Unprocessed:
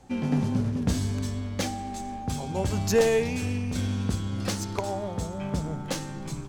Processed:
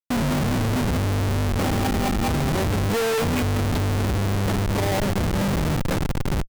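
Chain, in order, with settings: speakerphone echo 190 ms, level -18 dB; LFO low-pass saw down 4.8 Hz 780–3900 Hz; Schmitt trigger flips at -30.5 dBFS; trim +6 dB

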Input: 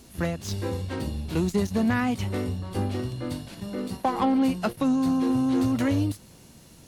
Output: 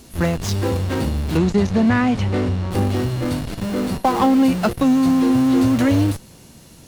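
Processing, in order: in parallel at -8.5 dB: Schmitt trigger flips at -36 dBFS; 1.37–2.71 s: on the sum: distance through air 75 m; trim +6 dB

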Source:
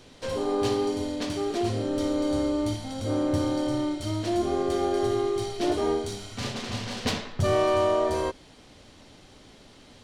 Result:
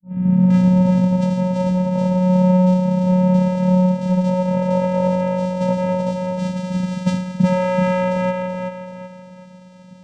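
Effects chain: tape start-up on the opening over 1.02 s; feedback echo behind a low-pass 379 ms, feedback 37%, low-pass 3.9 kHz, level -3.5 dB; vocoder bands 4, square 183 Hz; trim +8.5 dB

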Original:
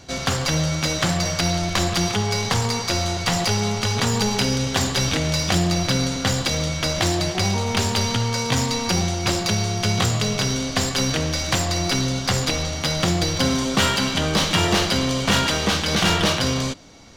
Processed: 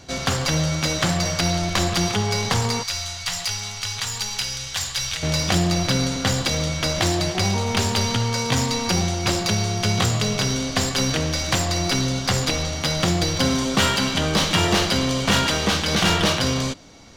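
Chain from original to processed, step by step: 2.83–5.23 s: amplifier tone stack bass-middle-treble 10-0-10

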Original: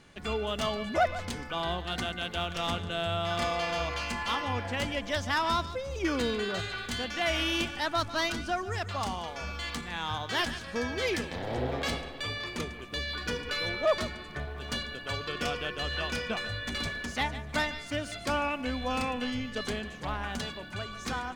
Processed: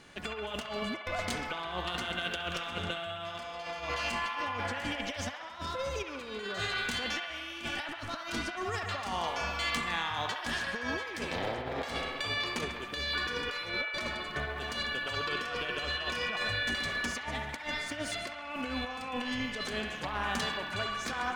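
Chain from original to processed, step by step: bass shelf 200 Hz -7.5 dB; compressor with a negative ratio -36 dBFS, ratio -0.5; on a send: feedback echo behind a band-pass 67 ms, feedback 74%, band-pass 1.5 kHz, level -4 dB

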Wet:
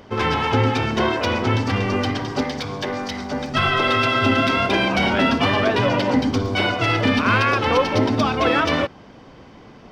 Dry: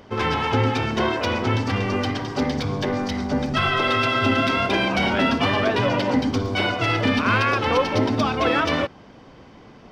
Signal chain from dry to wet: 2.41–3.55 s: bass shelf 390 Hz -9 dB; trim +2 dB

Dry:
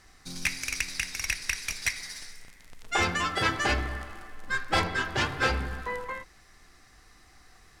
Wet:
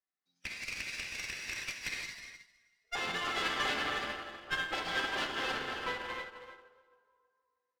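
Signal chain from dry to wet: high-pass 64 Hz 24 dB/octave; three-band isolator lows -21 dB, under 190 Hz, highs -13 dB, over 5.6 kHz; plate-style reverb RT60 3.6 s, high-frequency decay 0.85×, DRR 0.5 dB; peak limiter -21 dBFS, peak gain reduction 9 dB; spectral noise reduction 18 dB; one-sided clip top -40.5 dBFS; dynamic bell 3.3 kHz, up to +4 dB, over -50 dBFS, Q 1.1; on a send: feedback delay 319 ms, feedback 26%, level -7 dB; on the sum: upward expansion 2.5:1, over -45 dBFS

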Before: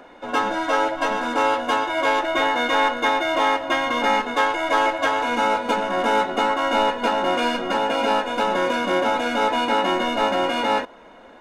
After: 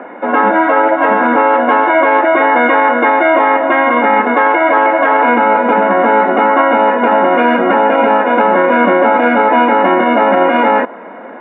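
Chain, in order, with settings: Chebyshev band-pass 200–2100 Hz, order 3; distance through air 110 m; loudness maximiser +17.5 dB; trim -1 dB

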